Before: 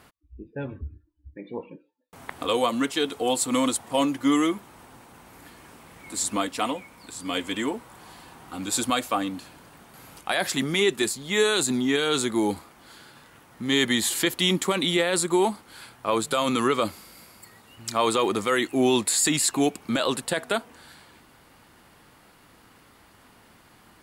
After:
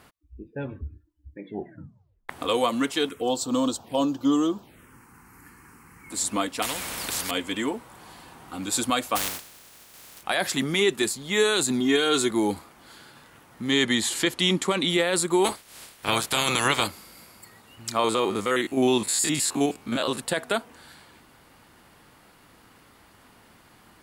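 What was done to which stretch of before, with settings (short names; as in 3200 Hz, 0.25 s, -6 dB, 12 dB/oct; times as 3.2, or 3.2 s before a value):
1.44 tape stop 0.85 s
3.09–6.11 envelope phaser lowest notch 550 Hz, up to 2100 Hz, full sweep at -23.5 dBFS
6.62–7.31 spectral compressor 4:1
9.15–10.22 spectral contrast lowered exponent 0.15
11.8–12.31 comb 2.8 ms
13.71–14.9 LPF 9300 Hz
15.44–16.86 spectral limiter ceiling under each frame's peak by 22 dB
17.99–20.2 stepped spectrum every 50 ms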